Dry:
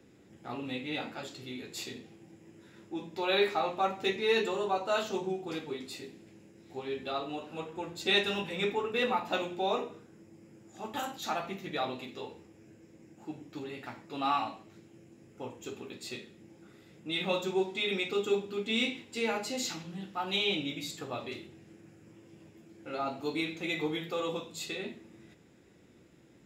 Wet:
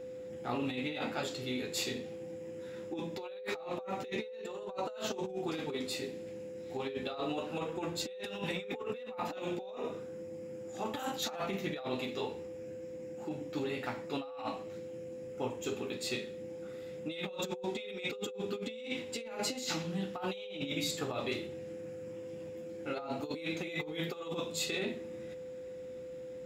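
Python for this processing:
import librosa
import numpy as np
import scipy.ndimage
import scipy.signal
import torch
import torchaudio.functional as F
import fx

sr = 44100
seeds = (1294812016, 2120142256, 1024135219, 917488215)

y = fx.over_compress(x, sr, threshold_db=-38.0, ratio=-0.5)
y = y + 10.0 ** (-42.0 / 20.0) * np.sin(2.0 * np.pi * 510.0 * np.arange(len(y)) / sr)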